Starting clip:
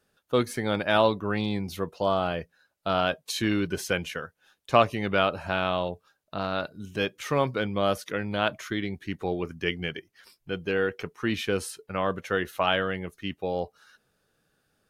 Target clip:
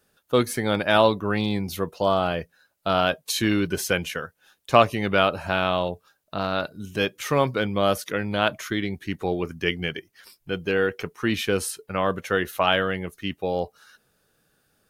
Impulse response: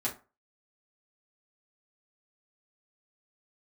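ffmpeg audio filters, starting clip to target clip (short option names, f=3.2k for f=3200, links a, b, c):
-af "highshelf=f=9.5k:g=8.5,volume=3.5dB"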